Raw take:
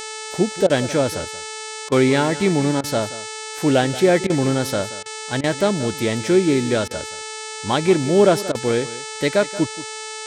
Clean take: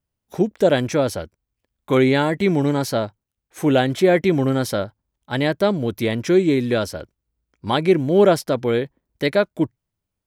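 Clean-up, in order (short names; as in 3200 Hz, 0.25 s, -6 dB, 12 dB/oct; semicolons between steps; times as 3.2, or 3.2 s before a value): de-hum 436.3 Hz, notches 21; interpolate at 0.67/1.89/2.81/4.27/5.03/5.41/6.88/8.52, 27 ms; inverse comb 0.179 s -16 dB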